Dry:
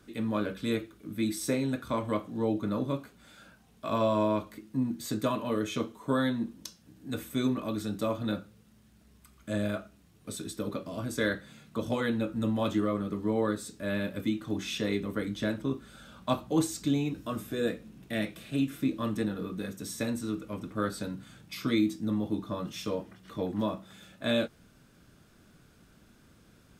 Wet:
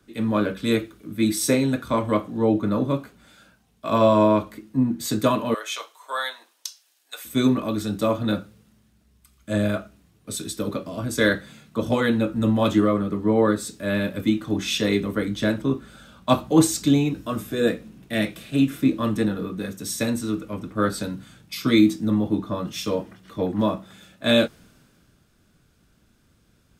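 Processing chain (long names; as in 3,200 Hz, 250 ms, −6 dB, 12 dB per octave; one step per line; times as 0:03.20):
0:05.54–0:07.25: inverse Chebyshev high-pass filter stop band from 150 Hz, stop band 70 dB
multiband upward and downward expander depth 40%
level +8.5 dB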